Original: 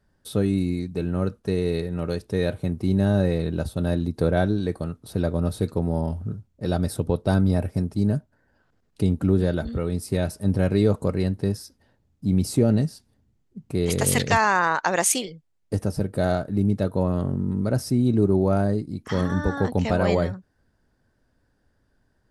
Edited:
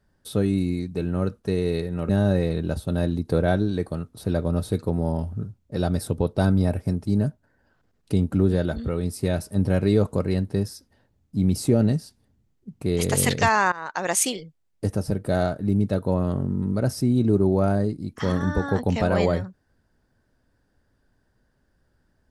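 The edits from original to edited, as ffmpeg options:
ffmpeg -i in.wav -filter_complex "[0:a]asplit=3[link_01][link_02][link_03];[link_01]atrim=end=2.092[link_04];[link_02]atrim=start=2.978:end=14.61,asetpts=PTS-STARTPTS,afade=type=out:start_time=11.628:duration=0.004:curve=hsin:silence=0.0944061[link_05];[link_03]atrim=start=14.61,asetpts=PTS-STARTPTS,afade=type=in:duration=0.53:silence=0.0944061[link_06];[link_05][link_06]concat=n=2:v=0:a=1[link_07];[link_04][link_07]acrossfade=duration=0.004:curve1=hsin:curve2=hsin" out.wav

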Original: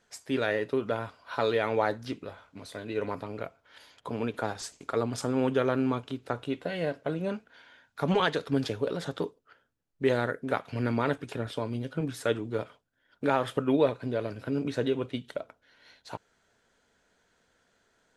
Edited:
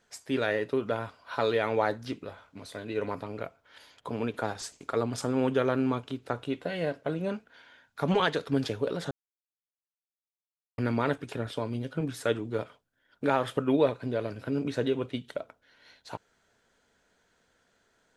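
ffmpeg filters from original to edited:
ffmpeg -i in.wav -filter_complex "[0:a]asplit=3[link_01][link_02][link_03];[link_01]atrim=end=9.11,asetpts=PTS-STARTPTS,afade=type=out:start_time=9.106:duration=0.004:curve=hsin[link_04];[link_02]atrim=start=9.11:end=10.78,asetpts=PTS-STARTPTS,volume=0[link_05];[link_03]atrim=start=10.78,asetpts=PTS-STARTPTS,afade=type=in:duration=0.004:curve=hsin[link_06];[link_04][link_05][link_06]concat=n=3:v=0:a=1" out.wav

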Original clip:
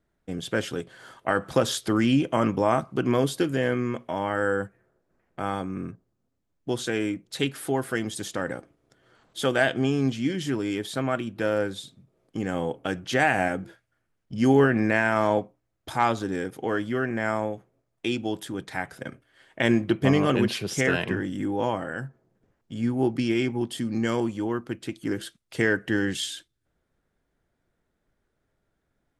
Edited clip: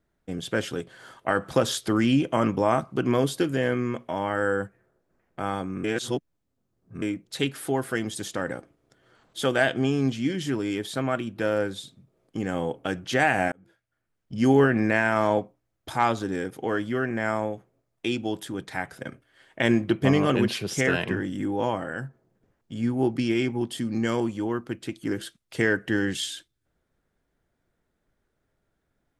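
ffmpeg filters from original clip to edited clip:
ffmpeg -i in.wav -filter_complex "[0:a]asplit=4[link_01][link_02][link_03][link_04];[link_01]atrim=end=5.842[link_05];[link_02]atrim=start=5.838:end=7.022,asetpts=PTS-STARTPTS,areverse[link_06];[link_03]atrim=start=7.018:end=13.52,asetpts=PTS-STARTPTS,afade=type=out:start_time=6.498:duration=0.004:curve=hsin[link_07];[link_04]atrim=start=13.52,asetpts=PTS-STARTPTS,afade=type=in:duration=0.84[link_08];[link_05][link_06]acrossfade=duration=0.004:curve1=hsin:curve2=hsin[link_09];[link_07][link_08]concat=n=2:v=0:a=1[link_10];[link_09][link_10]acrossfade=duration=0.004:curve1=hsin:curve2=hsin" out.wav

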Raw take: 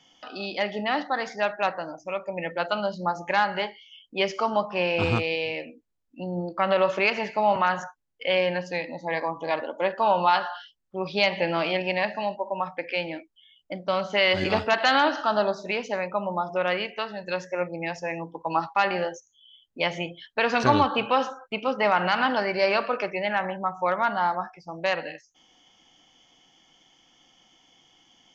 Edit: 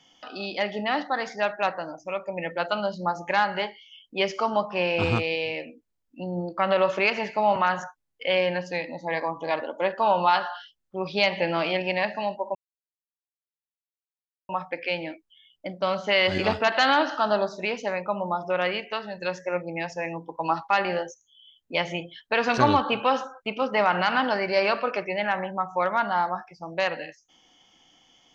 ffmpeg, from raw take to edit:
ffmpeg -i in.wav -filter_complex "[0:a]asplit=2[link_01][link_02];[link_01]atrim=end=12.55,asetpts=PTS-STARTPTS,afade=type=out:start_time=12.546:duration=0.004:curve=hsin,apad=pad_dur=1.94[link_03];[link_02]atrim=start=12.55,asetpts=PTS-STARTPTS,afade=type=in:duration=0.004:curve=hsin[link_04];[link_03][link_04]concat=n=2:v=0:a=1" out.wav

